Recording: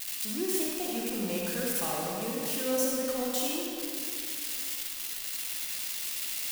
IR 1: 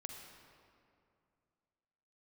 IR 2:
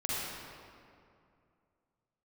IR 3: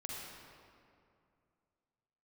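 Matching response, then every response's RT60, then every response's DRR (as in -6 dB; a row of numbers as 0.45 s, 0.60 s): 3; 2.4 s, 2.4 s, 2.4 s; 2.5 dB, -7.5 dB, -3.5 dB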